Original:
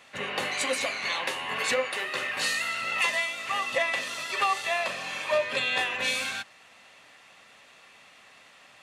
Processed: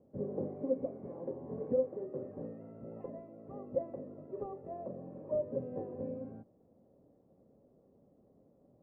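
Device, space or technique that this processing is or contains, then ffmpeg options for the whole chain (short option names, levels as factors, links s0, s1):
under water: -af "lowpass=f=420:w=0.5412,lowpass=f=420:w=1.3066,equalizer=f=550:t=o:w=0.27:g=4,volume=1.5"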